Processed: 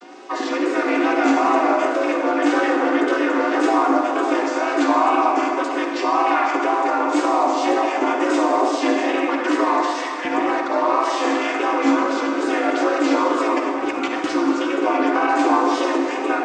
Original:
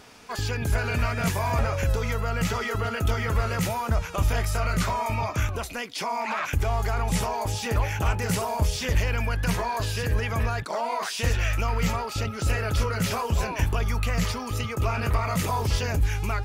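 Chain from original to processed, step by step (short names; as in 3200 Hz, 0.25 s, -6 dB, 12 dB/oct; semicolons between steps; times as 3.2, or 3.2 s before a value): chord vocoder major triad, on A#3; 9.8–10.25 HPF 1400 Hz; 13.57–14.24 negative-ratio compressor -33 dBFS, ratio -0.5; frequency shift +54 Hz; wow and flutter 90 cents; reverb RT60 2.6 s, pre-delay 38 ms, DRR 1 dB; gain +7 dB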